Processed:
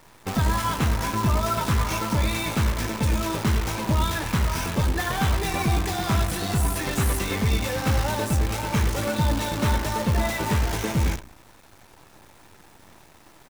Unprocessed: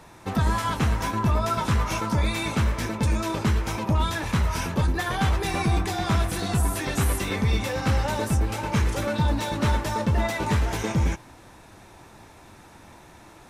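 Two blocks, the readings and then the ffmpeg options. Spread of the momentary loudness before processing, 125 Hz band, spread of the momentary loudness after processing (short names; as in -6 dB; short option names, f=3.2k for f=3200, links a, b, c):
2 LU, +0.5 dB, 1 LU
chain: -filter_complex "[0:a]asplit=2[a][b];[b]adelay=92,lowpass=f=4k:p=1,volume=-13dB,asplit=2[c][d];[d]adelay=92,lowpass=f=4k:p=1,volume=0.32,asplit=2[e][f];[f]adelay=92,lowpass=f=4k:p=1,volume=0.32[g];[a][c][e][g]amix=inputs=4:normalize=0,acrusher=bits=6:dc=4:mix=0:aa=0.000001"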